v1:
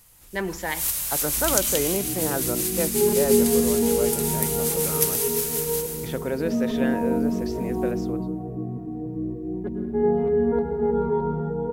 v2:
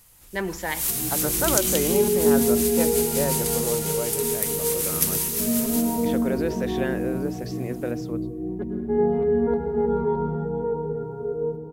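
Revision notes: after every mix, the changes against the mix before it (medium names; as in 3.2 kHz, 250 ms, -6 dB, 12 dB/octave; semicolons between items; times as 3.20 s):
second sound: entry -1.05 s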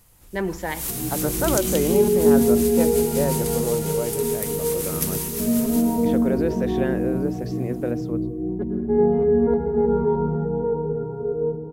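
master: add tilt shelf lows +4 dB, about 1.1 kHz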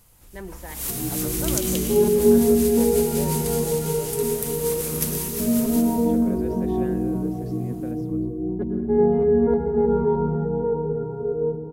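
speech -12.0 dB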